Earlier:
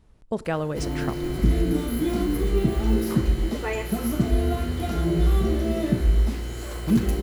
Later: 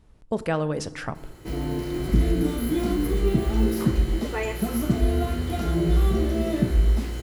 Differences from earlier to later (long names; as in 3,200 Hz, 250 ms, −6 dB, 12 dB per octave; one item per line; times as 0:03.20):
speech: send +6.5 dB
background: entry +0.70 s